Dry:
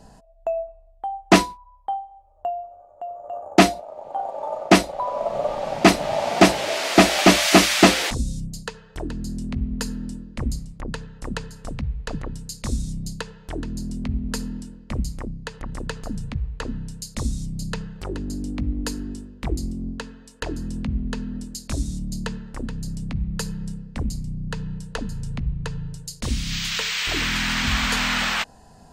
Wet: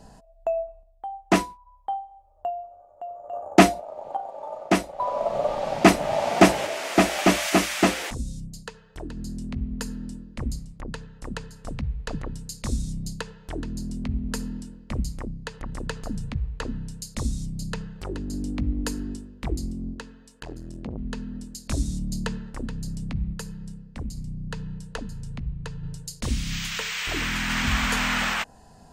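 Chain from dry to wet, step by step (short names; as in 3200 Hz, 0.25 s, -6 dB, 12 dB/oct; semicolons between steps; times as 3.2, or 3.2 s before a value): dynamic EQ 4200 Hz, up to -6 dB, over -38 dBFS, Q 1.5; random-step tremolo 1.2 Hz; 19.94–20.98 core saturation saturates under 450 Hz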